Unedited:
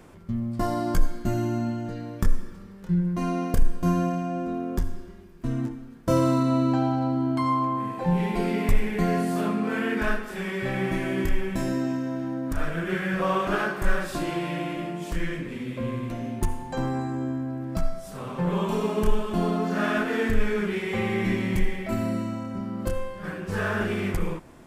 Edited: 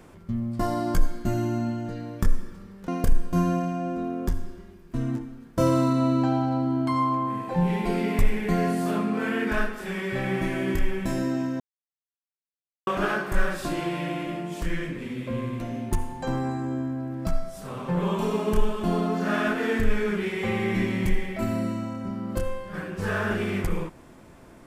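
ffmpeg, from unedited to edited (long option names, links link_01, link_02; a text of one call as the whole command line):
ffmpeg -i in.wav -filter_complex "[0:a]asplit=4[link_01][link_02][link_03][link_04];[link_01]atrim=end=2.882[link_05];[link_02]atrim=start=3.378:end=12.1,asetpts=PTS-STARTPTS,afade=type=out:start_time=8.718:duration=0.004:curve=hsin[link_06];[link_03]atrim=start=12.1:end=13.37,asetpts=PTS-STARTPTS,volume=0[link_07];[link_04]atrim=start=13.37,asetpts=PTS-STARTPTS,afade=type=in:duration=0.004:curve=hsin[link_08];[link_06][link_07][link_08]concat=n=3:v=0:a=1[link_09];[link_05][link_09]acrossfade=duration=0.004:curve1=hsin:curve2=hsin" out.wav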